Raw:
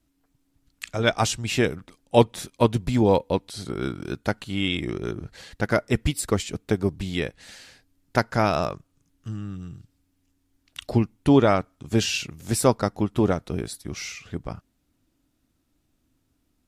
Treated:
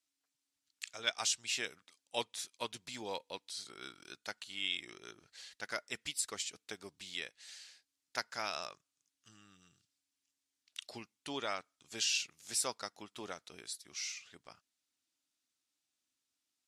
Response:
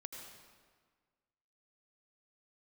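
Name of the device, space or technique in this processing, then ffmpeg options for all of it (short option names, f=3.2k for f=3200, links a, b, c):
piezo pickup straight into a mixer: -af "lowpass=6.3k,aderivative"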